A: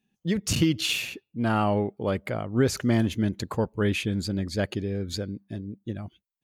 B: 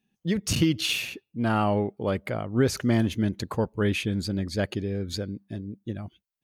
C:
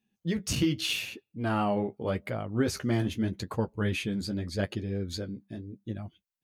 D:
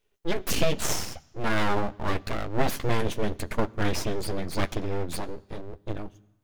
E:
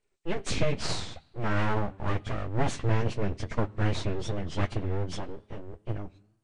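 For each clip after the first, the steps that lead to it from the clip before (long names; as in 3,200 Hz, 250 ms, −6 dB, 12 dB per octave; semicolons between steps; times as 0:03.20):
notch filter 7,300 Hz, Q 14
flanger 0.83 Hz, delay 8.2 ms, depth 7.4 ms, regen −32%
full-wave rectification; on a send at −22 dB: convolution reverb RT60 1.0 s, pre-delay 3 ms; on the sum: level +6 dB
hearing-aid frequency compression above 1,800 Hz 1.5 to 1; dynamic equaliser 110 Hz, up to +8 dB, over −46 dBFS, Q 1.6; tape wow and flutter 100 cents; level −3.5 dB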